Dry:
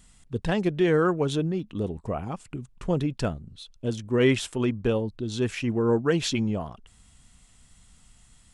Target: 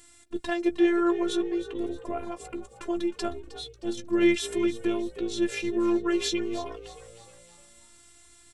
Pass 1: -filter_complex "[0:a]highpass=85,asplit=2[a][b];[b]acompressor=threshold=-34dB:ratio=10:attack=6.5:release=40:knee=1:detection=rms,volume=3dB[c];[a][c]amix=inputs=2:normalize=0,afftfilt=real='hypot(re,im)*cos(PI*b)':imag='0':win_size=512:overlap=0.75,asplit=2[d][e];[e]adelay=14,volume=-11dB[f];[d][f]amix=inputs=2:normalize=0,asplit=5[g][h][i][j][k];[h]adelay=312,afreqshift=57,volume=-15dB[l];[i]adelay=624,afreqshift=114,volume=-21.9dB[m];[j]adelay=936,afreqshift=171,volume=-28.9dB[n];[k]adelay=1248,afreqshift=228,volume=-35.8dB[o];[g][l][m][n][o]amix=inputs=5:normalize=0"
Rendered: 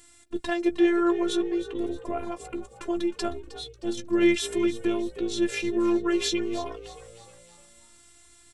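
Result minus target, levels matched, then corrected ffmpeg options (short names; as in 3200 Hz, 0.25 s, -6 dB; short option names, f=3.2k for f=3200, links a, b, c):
compressor: peak gain reduction -6 dB
-filter_complex "[0:a]highpass=85,asplit=2[a][b];[b]acompressor=threshold=-40.5dB:ratio=10:attack=6.5:release=40:knee=1:detection=rms,volume=3dB[c];[a][c]amix=inputs=2:normalize=0,afftfilt=real='hypot(re,im)*cos(PI*b)':imag='0':win_size=512:overlap=0.75,asplit=2[d][e];[e]adelay=14,volume=-11dB[f];[d][f]amix=inputs=2:normalize=0,asplit=5[g][h][i][j][k];[h]adelay=312,afreqshift=57,volume=-15dB[l];[i]adelay=624,afreqshift=114,volume=-21.9dB[m];[j]adelay=936,afreqshift=171,volume=-28.9dB[n];[k]adelay=1248,afreqshift=228,volume=-35.8dB[o];[g][l][m][n][o]amix=inputs=5:normalize=0"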